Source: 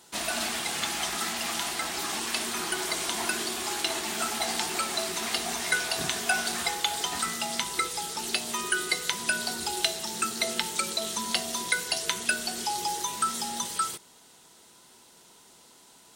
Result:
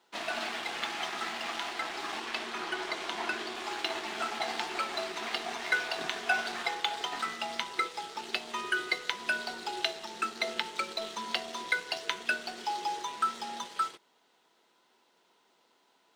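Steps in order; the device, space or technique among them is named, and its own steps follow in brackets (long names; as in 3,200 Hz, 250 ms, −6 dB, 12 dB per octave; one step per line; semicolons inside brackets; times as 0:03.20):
phone line with mismatched companding (band-pass filter 310–3,300 Hz; mu-law and A-law mismatch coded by A)
0:02.20–0:03.55: high-shelf EQ 8,200 Hz −5 dB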